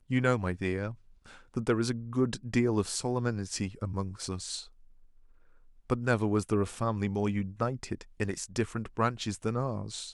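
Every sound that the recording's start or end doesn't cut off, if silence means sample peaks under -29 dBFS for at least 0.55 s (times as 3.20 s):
1.57–4.56 s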